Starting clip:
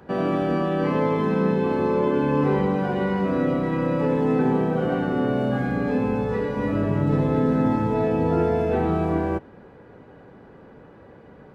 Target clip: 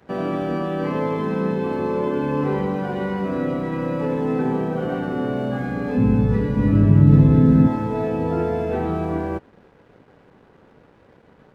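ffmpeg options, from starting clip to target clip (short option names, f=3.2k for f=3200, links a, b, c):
-filter_complex "[0:a]asplit=3[a][b][c];[a]afade=t=out:st=5.96:d=0.02[d];[b]asubboost=boost=5.5:cutoff=240,afade=t=in:st=5.96:d=0.02,afade=t=out:st=7.66:d=0.02[e];[c]afade=t=in:st=7.66:d=0.02[f];[d][e][f]amix=inputs=3:normalize=0,aeval=exprs='sgn(val(0))*max(abs(val(0))-0.00251,0)':c=same,volume=-1dB"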